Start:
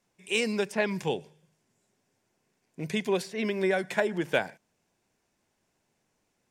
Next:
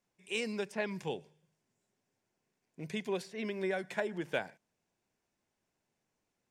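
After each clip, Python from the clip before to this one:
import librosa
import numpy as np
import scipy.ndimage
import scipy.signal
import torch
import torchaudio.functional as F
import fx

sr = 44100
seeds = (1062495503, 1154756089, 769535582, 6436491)

y = fx.high_shelf(x, sr, hz=11000.0, db=-5.5)
y = y * 10.0 ** (-8.0 / 20.0)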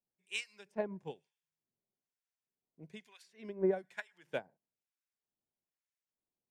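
y = fx.harmonic_tremolo(x, sr, hz=1.1, depth_pct=100, crossover_hz=1100.0)
y = fx.upward_expand(y, sr, threshold_db=-45.0, expansion=2.5)
y = y * 10.0 ** (6.5 / 20.0)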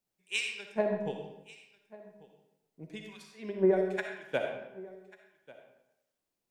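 y = x + 10.0 ** (-21.0 / 20.0) * np.pad(x, (int(1142 * sr / 1000.0), 0))[:len(x)]
y = fx.rev_freeverb(y, sr, rt60_s=0.89, hf_ratio=0.75, predelay_ms=20, drr_db=2.5)
y = y * 10.0 ** (6.0 / 20.0)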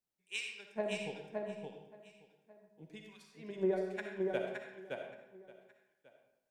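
y = x + 10.0 ** (-3.5 / 20.0) * np.pad(x, (int(568 * sr / 1000.0), 0))[:len(x)]
y = y * 10.0 ** (-7.5 / 20.0)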